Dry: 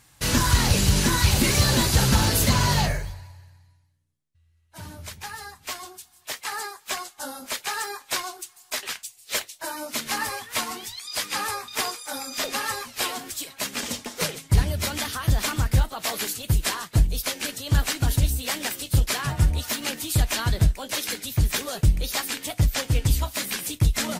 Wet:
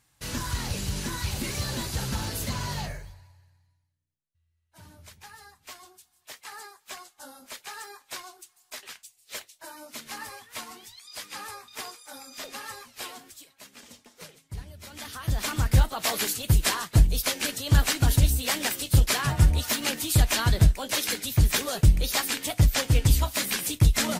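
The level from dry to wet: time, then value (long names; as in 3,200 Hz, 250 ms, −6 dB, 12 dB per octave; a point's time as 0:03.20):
0:13.14 −11 dB
0:13.62 −19 dB
0:14.82 −19 dB
0:15.06 −9.5 dB
0:15.80 +1 dB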